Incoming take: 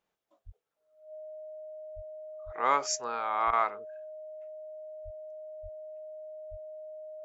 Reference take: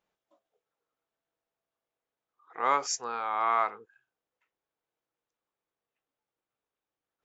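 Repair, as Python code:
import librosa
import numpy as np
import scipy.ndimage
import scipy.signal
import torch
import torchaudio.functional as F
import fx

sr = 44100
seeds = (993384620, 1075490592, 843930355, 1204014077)

y = fx.notch(x, sr, hz=620.0, q=30.0)
y = fx.fix_deplosive(y, sr, at_s=(0.45, 1.95, 2.45, 3.46, 5.04, 5.62, 6.5))
y = fx.fix_interpolate(y, sr, at_s=(3.51,), length_ms=16.0)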